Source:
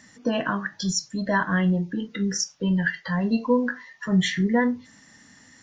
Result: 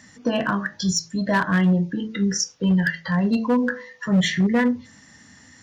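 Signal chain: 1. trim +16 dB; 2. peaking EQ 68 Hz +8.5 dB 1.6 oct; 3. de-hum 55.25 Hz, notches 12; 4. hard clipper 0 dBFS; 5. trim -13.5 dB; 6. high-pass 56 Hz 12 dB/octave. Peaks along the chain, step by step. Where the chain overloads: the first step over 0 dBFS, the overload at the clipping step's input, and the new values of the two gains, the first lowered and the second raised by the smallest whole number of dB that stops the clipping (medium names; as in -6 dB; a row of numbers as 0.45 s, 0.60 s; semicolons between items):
+7.0 dBFS, +7.5 dBFS, +7.5 dBFS, 0.0 dBFS, -13.5 dBFS, -10.5 dBFS; step 1, 7.5 dB; step 1 +8 dB, step 5 -5.5 dB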